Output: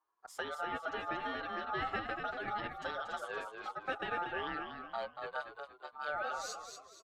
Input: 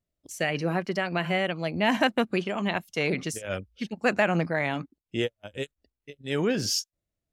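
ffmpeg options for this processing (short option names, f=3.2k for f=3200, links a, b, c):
-filter_complex "[0:a]lowpass=f=1.3k:p=1,acompressor=threshold=-41dB:ratio=3,aeval=exprs='val(0)*sin(2*PI*1000*n/s)':c=same,asplit=6[a][b][c][d][e][f];[b]adelay=245,afreqshift=-51,volume=-6.5dB[g];[c]adelay=490,afreqshift=-102,volume=-14.7dB[h];[d]adelay=735,afreqshift=-153,volume=-22.9dB[i];[e]adelay=980,afreqshift=-204,volume=-31dB[j];[f]adelay=1225,afreqshift=-255,volume=-39.2dB[k];[a][g][h][i][j][k]amix=inputs=6:normalize=0,asetrate=45938,aresample=44100,asplit=2[l][m];[m]adelay=7,afreqshift=2[n];[l][n]amix=inputs=2:normalize=1,volume=6.5dB"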